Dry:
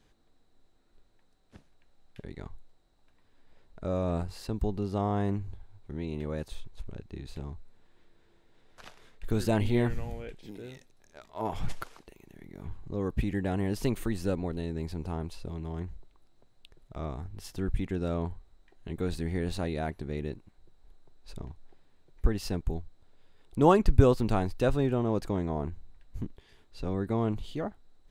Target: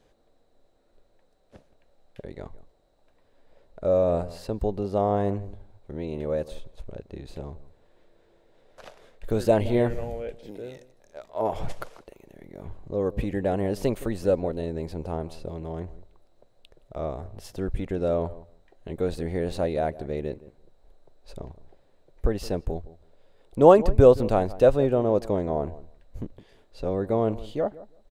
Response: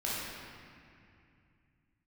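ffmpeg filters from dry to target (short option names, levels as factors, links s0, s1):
-filter_complex "[0:a]equalizer=f=560:w=1.7:g=13,asplit=2[s0][s1];[s1]adelay=167,lowpass=f=1400:p=1,volume=0.133,asplit=2[s2][s3];[s3]adelay=167,lowpass=f=1400:p=1,volume=0.15[s4];[s2][s4]amix=inputs=2:normalize=0[s5];[s0][s5]amix=inputs=2:normalize=0"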